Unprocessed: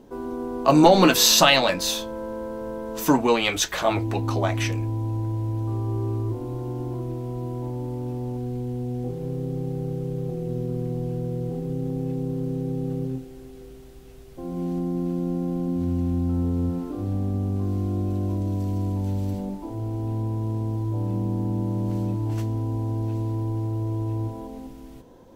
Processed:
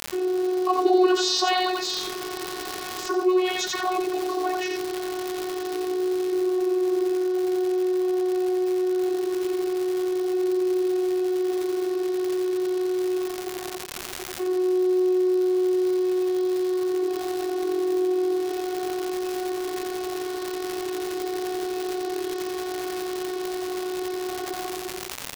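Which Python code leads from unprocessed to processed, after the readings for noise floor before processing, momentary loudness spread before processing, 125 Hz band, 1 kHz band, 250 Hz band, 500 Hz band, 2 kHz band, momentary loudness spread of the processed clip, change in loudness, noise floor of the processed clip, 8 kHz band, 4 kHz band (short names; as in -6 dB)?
-43 dBFS, 12 LU, under -30 dB, -1.0 dB, +0.5 dB, +5.0 dB, -3.0 dB, 9 LU, -0.5 dB, -34 dBFS, -6.0 dB, -4.0 dB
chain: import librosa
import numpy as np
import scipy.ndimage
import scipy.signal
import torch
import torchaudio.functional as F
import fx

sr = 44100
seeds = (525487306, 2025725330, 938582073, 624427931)

p1 = fx.peak_eq(x, sr, hz=650.0, db=-3.0, octaves=0.77)
p2 = fx.quant_dither(p1, sr, seeds[0], bits=6, dither='none')
p3 = fx.comb_fb(p2, sr, f0_hz=810.0, decay_s=0.41, harmonics='all', damping=0.0, mix_pct=80)
p4 = fx.vocoder(p3, sr, bands=32, carrier='saw', carrier_hz=367.0)
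p5 = fx.dmg_crackle(p4, sr, seeds[1], per_s=170.0, level_db=-40.0)
p6 = p5 + fx.echo_single(p5, sr, ms=87, db=-4.0, dry=0)
p7 = fx.env_flatten(p6, sr, amount_pct=50)
y = F.gain(torch.from_numpy(p7), 5.0).numpy()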